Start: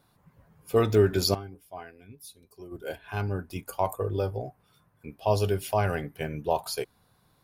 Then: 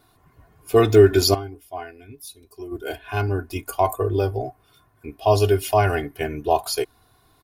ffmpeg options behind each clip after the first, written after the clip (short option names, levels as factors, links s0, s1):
-af "aecho=1:1:2.8:0.71,volume=1.88"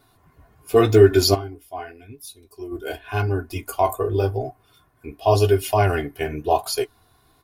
-af "flanger=delay=7.3:depth=8:regen=-40:speed=0.89:shape=sinusoidal,volume=1.58"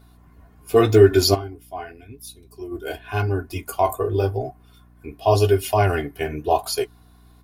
-af "aeval=exprs='val(0)+0.00316*(sin(2*PI*60*n/s)+sin(2*PI*2*60*n/s)/2+sin(2*PI*3*60*n/s)/3+sin(2*PI*4*60*n/s)/4+sin(2*PI*5*60*n/s)/5)':c=same"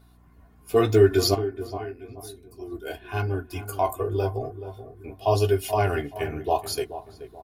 -filter_complex "[0:a]asplit=2[s0][s1];[s1]adelay=429,lowpass=f=1100:p=1,volume=0.266,asplit=2[s2][s3];[s3]adelay=429,lowpass=f=1100:p=1,volume=0.4,asplit=2[s4][s5];[s5]adelay=429,lowpass=f=1100:p=1,volume=0.4,asplit=2[s6][s7];[s7]adelay=429,lowpass=f=1100:p=1,volume=0.4[s8];[s0][s2][s4][s6][s8]amix=inputs=5:normalize=0,volume=0.596"